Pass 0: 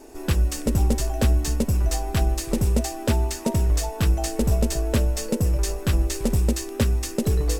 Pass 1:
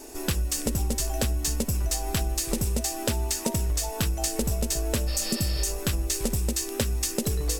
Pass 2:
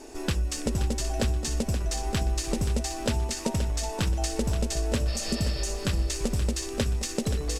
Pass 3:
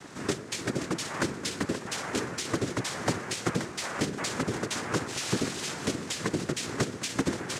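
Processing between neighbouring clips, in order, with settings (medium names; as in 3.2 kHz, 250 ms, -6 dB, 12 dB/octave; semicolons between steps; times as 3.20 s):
spectral replace 5.10–5.64 s, 410–5500 Hz after; treble shelf 2.8 kHz +10.5 dB; compression, threshold -23 dBFS, peak gain reduction 9 dB
distance through air 62 m; feedback delay 527 ms, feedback 31%, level -9.5 dB
noise-vocoded speech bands 3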